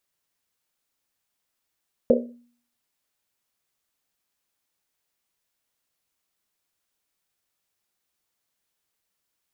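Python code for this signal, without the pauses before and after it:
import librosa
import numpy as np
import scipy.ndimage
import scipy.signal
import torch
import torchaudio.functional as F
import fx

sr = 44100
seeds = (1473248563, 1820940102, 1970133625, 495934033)

y = fx.risset_drum(sr, seeds[0], length_s=1.1, hz=240.0, decay_s=0.53, noise_hz=500.0, noise_width_hz=180.0, noise_pct=60)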